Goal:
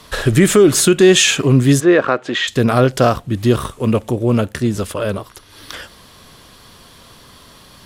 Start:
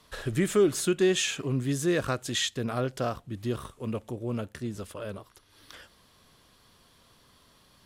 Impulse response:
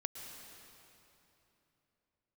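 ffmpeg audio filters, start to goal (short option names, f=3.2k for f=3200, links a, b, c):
-filter_complex "[0:a]asplit=3[a][b][c];[a]afade=t=out:st=1.79:d=0.02[d];[b]highpass=310,lowpass=2.1k,afade=t=in:st=1.79:d=0.02,afade=t=out:st=2.47:d=0.02[e];[c]afade=t=in:st=2.47:d=0.02[f];[d][e][f]amix=inputs=3:normalize=0,alimiter=level_in=18dB:limit=-1dB:release=50:level=0:latency=1,volume=-1dB"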